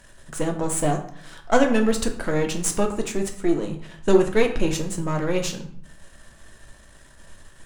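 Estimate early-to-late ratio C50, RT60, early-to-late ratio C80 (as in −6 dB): 9.5 dB, 0.60 s, 12.5 dB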